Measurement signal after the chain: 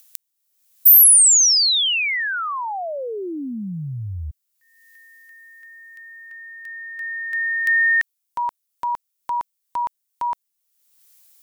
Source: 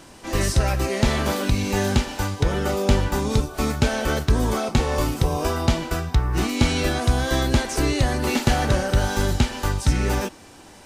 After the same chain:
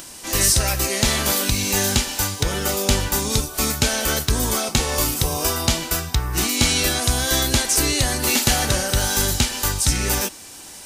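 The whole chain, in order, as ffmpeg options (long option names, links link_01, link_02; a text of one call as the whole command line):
ffmpeg -i in.wav -af "crystalizer=i=5.5:c=0,acompressor=mode=upward:threshold=-33dB:ratio=2.5,volume=-2.5dB" out.wav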